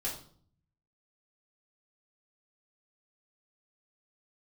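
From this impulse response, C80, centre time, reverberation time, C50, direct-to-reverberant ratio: 11.5 dB, 28 ms, 0.50 s, 7.0 dB, -8.0 dB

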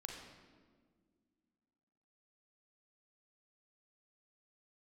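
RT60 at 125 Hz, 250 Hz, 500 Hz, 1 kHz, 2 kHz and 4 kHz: 2.4 s, 2.8 s, 2.1 s, 1.5 s, 1.2 s, 1.1 s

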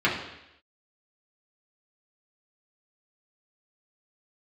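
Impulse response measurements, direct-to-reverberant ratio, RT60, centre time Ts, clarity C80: -6.5 dB, 0.85 s, 37 ms, 8.5 dB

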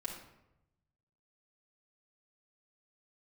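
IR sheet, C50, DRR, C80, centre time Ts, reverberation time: 4.5 dB, -3.5 dB, 8.0 dB, 31 ms, 0.90 s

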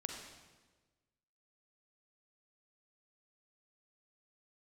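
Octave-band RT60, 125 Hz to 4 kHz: 1.6 s, 1.5 s, 1.4 s, 1.2 s, 1.1 s, 1.1 s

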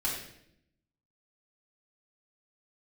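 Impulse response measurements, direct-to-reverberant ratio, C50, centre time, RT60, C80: -6.5 dB, 3.5 dB, 44 ms, 0.75 s, 6.0 dB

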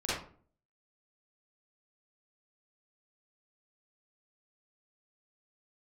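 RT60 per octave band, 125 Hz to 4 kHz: 0.60 s, 0.60 s, 0.50 s, 0.40 s, 0.35 s, 0.25 s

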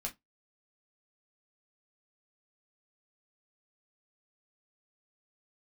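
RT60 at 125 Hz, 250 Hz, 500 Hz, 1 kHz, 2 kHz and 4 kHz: 0.20 s, 0.20 s, 0.15 s, 0.15 s, 0.15 s, 0.15 s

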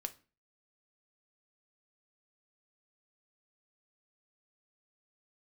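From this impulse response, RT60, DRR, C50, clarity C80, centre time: 0.35 s, 8.0 dB, 18.0 dB, 24.5 dB, 4 ms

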